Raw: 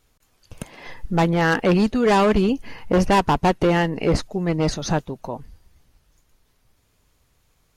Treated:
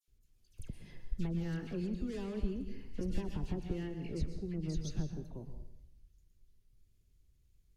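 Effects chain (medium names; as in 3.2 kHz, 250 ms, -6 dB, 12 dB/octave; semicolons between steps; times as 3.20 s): peaking EQ 370 Hz +6.5 dB 0.33 oct; compression 3:1, threshold -22 dBFS, peak gain reduction 8.5 dB; amplifier tone stack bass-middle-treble 10-0-1; phase dispersion lows, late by 80 ms, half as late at 2 kHz; reverberation RT60 0.75 s, pre-delay 107 ms, DRR 7.5 dB; trim +3.5 dB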